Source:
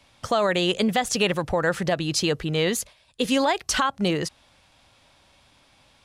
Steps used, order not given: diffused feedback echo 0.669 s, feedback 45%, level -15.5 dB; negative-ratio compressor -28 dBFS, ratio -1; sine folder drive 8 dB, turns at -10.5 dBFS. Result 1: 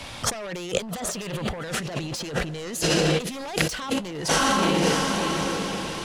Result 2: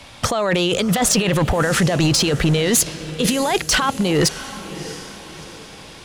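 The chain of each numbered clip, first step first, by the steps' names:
diffused feedback echo > sine folder > negative-ratio compressor; negative-ratio compressor > diffused feedback echo > sine folder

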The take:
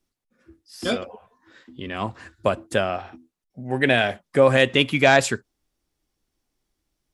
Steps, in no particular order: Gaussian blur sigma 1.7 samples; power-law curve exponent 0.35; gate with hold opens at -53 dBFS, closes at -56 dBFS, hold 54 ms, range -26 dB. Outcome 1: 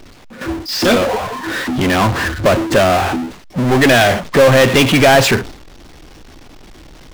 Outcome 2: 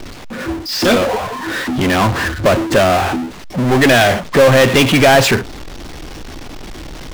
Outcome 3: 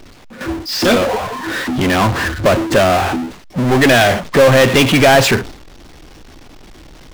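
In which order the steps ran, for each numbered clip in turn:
Gaussian blur > gate with hold > power-law curve; Gaussian blur > power-law curve > gate with hold; gate with hold > Gaussian blur > power-law curve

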